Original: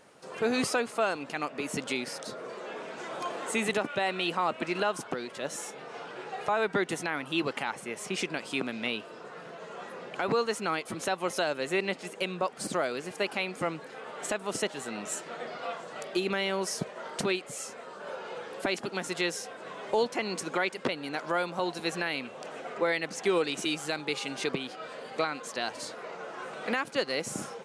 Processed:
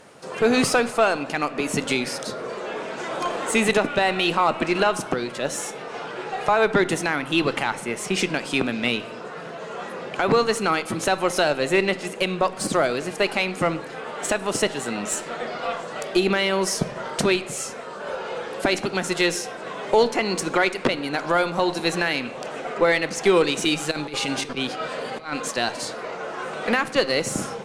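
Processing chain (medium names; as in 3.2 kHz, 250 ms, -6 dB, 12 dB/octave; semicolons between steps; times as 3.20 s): Chebyshev shaper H 4 -25 dB, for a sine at -16.5 dBFS; 23.91–25.51 s: compressor with a negative ratio -36 dBFS, ratio -0.5; bass shelf 150 Hz +3.5 dB; on a send: reverberation RT60 0.95 s, pre-delay 14 ms, DRR 14 dB; on the sum: trim +8.5 dB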